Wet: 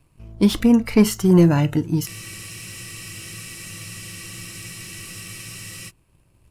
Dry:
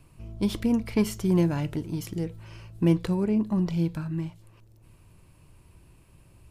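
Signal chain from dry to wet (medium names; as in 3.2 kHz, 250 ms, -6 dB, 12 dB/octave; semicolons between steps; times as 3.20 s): waveshaping leveller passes 1; spectral noise reduction 10 dB; spectral freeze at 2.10 s, 3.78 s; trim +7 dB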